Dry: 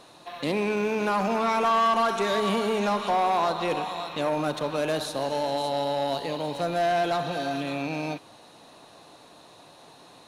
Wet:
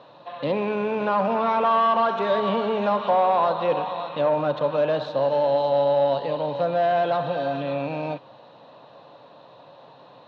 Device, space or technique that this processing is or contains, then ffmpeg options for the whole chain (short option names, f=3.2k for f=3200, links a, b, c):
guitar cabinet: -af "highpass=80,equalizer=f=81:t=q:w=4:g=-7,equalizer=f=130:t=q:w=4:g=7,equalizer=f=350:t=q:w=4:g=-4,equalizer=f=550:t=q:w=4:g=10,equalizer=f=970:t=q:w=4:g=5,equalizer=f=2.2k:t=q:w=4:g=-6,lowpass=f=3.6k:w=0.5412,lowpass=f=3.6k:w=1.3066"